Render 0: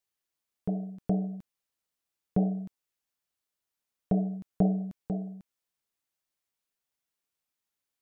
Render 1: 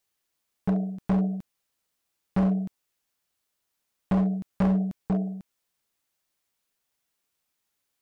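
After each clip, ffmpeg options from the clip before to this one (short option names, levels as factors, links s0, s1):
-af "asoftclip=type=hard:threshold=0.0447,volume=2.37"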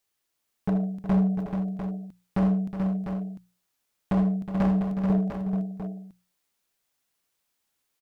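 -af "bandreject=f=60:t=h:w=6,bandreject=f=120:t=h:w=6,bandreject=f=180:t=h:w=6,aecho=1:1:78|366|434|699:0.266|0.282|0.473|0.422"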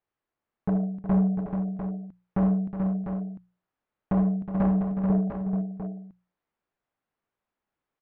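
-af "lowpass=1500"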